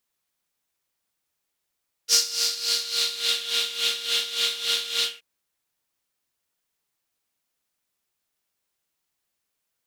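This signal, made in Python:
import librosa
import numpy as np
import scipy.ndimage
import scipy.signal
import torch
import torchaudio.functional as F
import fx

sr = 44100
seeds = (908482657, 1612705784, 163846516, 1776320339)

y = fx.sub_patch_tremolo(sr, seeds[0], note=70, wave='triangle', wave2='saw', interval_st=19, detune_cents=16, level2_db=-9.5, sub_db=-15.0, noise_db=-0.5, kind='bandpass', cutoff_hz=2700.0, q=4.2, env_oct=1.0, env_decay_s=1.35, env_sustain_pct=40, attack_ms=56.0, decay_s=0.11, sustain_db=-6, release_s=0.17, note_s=2.96, lfo_hz=3.5, tremolo_db=12.5)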